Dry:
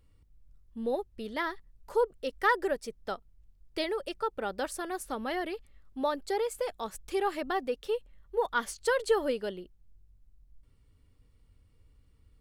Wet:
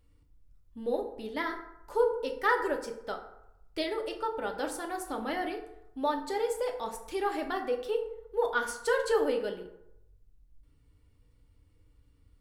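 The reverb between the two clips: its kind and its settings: FDN reverb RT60 0.83 s, low-frequency decay 0.8×, high-frequency decay 0.5×, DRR 2.5 dB; trim -2 dB

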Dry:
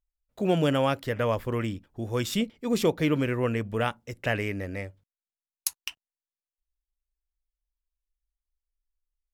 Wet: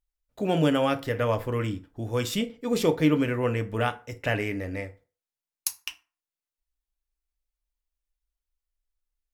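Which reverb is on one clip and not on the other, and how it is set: FDN reverb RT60 0.37 s, low-frequency decay 0.8×, high-frequency decay 0.65×, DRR 7 dB

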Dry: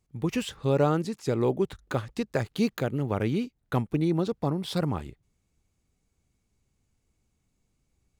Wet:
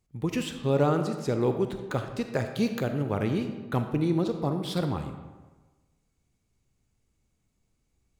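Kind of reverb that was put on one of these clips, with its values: algorithmic reverb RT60 1.3 s, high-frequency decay 0.65×, pre-delay 5 ms, DRR 6.5 dB; trim -1 dB

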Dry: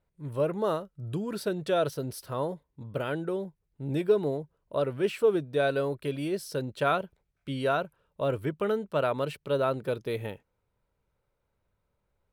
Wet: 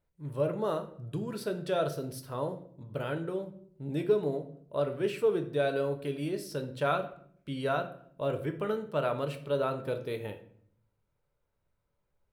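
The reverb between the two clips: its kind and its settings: simulated room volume 94 m³, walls mixed, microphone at 0.37 m; trim -4 dB

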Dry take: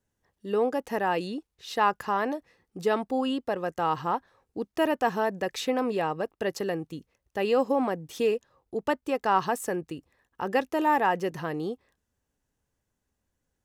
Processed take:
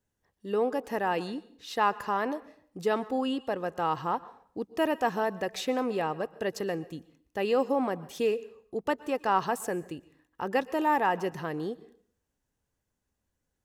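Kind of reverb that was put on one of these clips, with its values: plate-style reverb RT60 0.56 s, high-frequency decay 0.85×, pre-delay 105 ms, DRR 18.5 dB; trim -2 dB

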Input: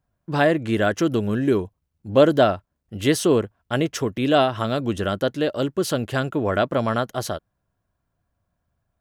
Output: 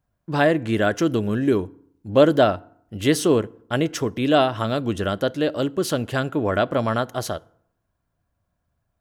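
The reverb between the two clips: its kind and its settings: FDN reverb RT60 0.67 s, low-frequency decay 1.1×, high-frequency decay 0.6×, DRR 19.5 dB

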